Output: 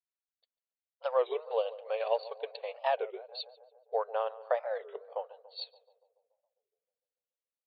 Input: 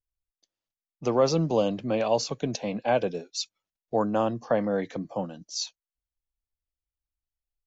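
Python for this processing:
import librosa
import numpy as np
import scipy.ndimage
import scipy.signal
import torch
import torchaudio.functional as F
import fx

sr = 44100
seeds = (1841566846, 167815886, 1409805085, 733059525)

y = fx.transient(x, sr, attack_db=3, sustain_db=-9)
y = fx.brickwall_bandpass(y, sr, low_hz=420.0, high_hz=4600.0)
y = fx.echo_filtered(y, sr, ms=143, feedback_pct=70, hz=1400.0, wet_db=-16)
y = fx.record_warp(y, sr, rpm=33.33, depth_cents=250.0)
y = F.gain(torch.from_numpy(y), -6.5).numpy()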